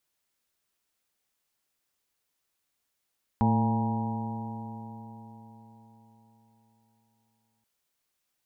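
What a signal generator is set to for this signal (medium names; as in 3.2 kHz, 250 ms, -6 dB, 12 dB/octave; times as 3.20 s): stretched partials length 4.23 s, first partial 111 Hz, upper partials 1.5/-15.5/-13/-17/-15/-4/-6 dB, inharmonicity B 0.0022, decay 4.50 s, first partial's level -24 dB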